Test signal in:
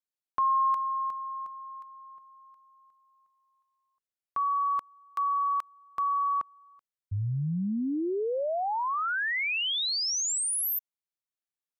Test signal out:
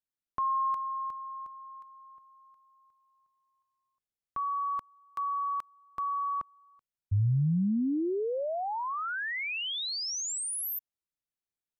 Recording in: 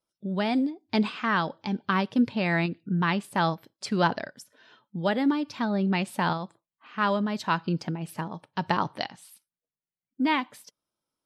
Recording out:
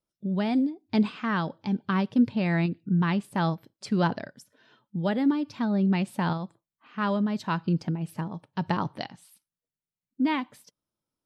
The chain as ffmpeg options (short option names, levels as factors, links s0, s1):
-af "lowshelf=f=310:g=10.5,volume=0.562"